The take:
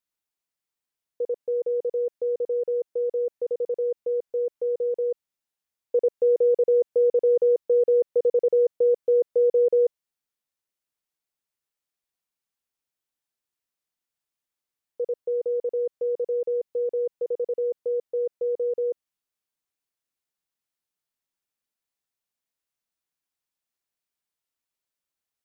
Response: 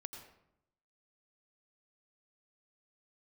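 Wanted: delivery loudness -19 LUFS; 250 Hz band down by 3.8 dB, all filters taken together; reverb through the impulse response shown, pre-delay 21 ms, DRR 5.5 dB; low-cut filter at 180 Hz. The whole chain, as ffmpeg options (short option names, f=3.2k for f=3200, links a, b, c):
-filter_complex "[0:a]highpass=180,equalizer=f=250:t=o:g=-8,asplit=2[a][b];[1:a]atrim=start_sample=2205,adelay=21[c];[b][c]afir=irnorm=-1:irlink=0,volume=-2dB[d];[a][d]amix=inputs=2:normalize=0,volume=6dB"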